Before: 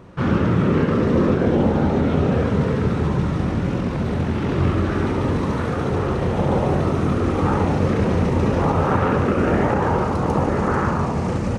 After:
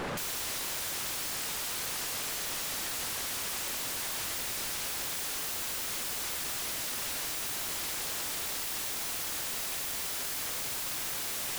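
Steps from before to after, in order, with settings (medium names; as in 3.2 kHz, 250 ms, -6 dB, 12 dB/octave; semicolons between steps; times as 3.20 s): in parallel at -2.5 dB: compressor with a negative ratio -22 dBFS, ratio -0.5; on the sum: high-pass 87 Hz 6 dB/octave; formant shift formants +4 st; treble shelf 5.7 kHz +8.5 dB; small resonant body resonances 200/1200/3300 Hz, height 12 dB, ringing for 45 ms; on a send: feedback echo behind a high-pass 162 ms, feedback 79%, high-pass 2.3 kHz, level -12 dB; on the sum: wavefolder -35.5 dBFS; peaking EQ 200 Hz -3 dB 0.24 oct; trim +5 dB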